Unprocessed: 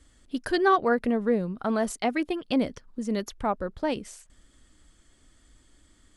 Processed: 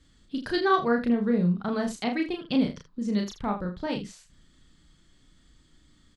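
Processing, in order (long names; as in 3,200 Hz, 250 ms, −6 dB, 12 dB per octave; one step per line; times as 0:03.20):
graphic EQ with 15 bands 160 Hz +11 dB, 630 Hz −4 dB, 4,000 Hz +6 dB, 10,000 Hz −10 dB
on a send: ambience of single reflections 34 ms −3.5 dB, 79 ms −12 dB
on the sum: level −3.5 dB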